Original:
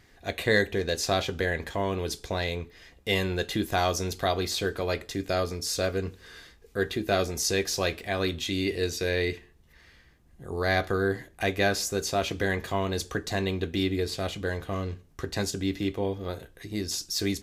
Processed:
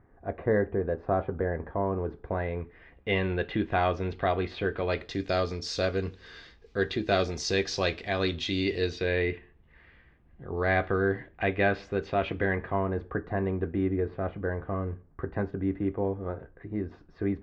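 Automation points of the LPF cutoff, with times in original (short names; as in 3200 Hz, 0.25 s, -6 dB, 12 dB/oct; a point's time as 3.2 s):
LPF 24 dB/oct
2.02 s 1300 Hz
3.12 s 2700 Hz
4.71 s 2700 Hz
5.17 s 5100 Hz
8.77 s 5100 Hz
9.27 s 2700 Hz
12.29 s 2700 Hz
12.87 s 1600 Hz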